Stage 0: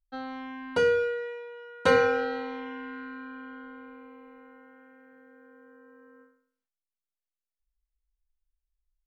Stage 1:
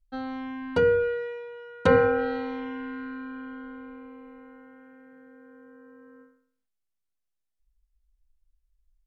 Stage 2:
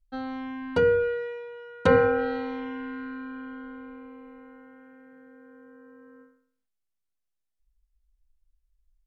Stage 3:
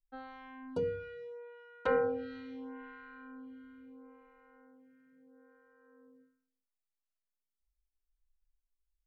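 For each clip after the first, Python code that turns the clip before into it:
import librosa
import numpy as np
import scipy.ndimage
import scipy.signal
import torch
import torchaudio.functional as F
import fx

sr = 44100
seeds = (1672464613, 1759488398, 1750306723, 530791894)

y1 = fx.env_lowpass_down(x, sr, base_hz=1900.0, full_db=-20.5)
y1 = fx.low_shelf(y1, sr, hz=230.0, db=12.0)
y2 = y1
y3 = fx.stagger_phaser(y2, sr, hz=0.75)
y3 = y3 * librosa.db_to_amplitude(-9.0)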